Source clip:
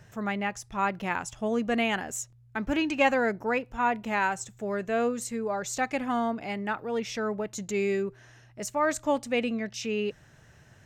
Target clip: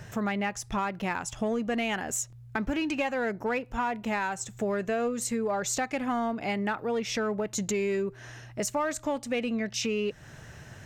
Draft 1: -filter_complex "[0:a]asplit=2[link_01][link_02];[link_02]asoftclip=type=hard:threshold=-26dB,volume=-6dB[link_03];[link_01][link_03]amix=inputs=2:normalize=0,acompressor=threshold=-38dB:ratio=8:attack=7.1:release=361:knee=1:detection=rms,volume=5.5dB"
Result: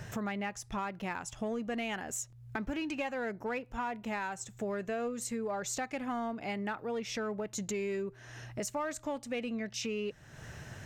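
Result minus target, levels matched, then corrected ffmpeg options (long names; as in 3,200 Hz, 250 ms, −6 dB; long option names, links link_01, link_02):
downward compressor: peak gain reduction +6.5 dB
-filter_complex "[0:a]asplit=2[link_01][link_02];[link_02]asoftclip=type=hard:threshold=-26dB,volume=-6dB[link_03];[link_01][link_03]amix=inputs=2:normalize=0,acompressor=threshold=-30.5dB:ratio=8:attack=7.1:release=361:knee=1:detection=rms,volume=5.5dB"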